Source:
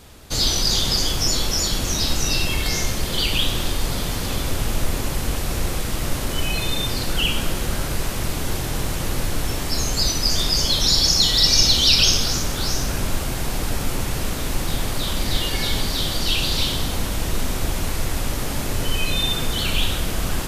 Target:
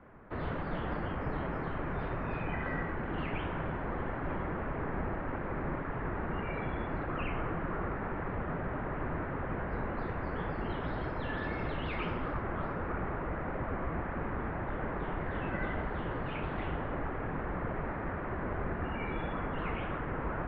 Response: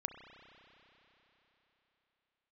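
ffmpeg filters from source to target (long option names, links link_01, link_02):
-af "flanger=delay=0.5:depth=8.3:regen=-39:speed=1.7:shape=triangular,highpass=frequency=180:width_type=q:width=0.5412,highpass=frequency=180:width_type=q:width=1.307,lowpass=frequency=2000:width_type=q:width=0.5176,lowpass=frequency=2000:width_type=q:width=0.7071,lowpass=frequency=2000:width_type=q:width=1.932,afreqshift=-200"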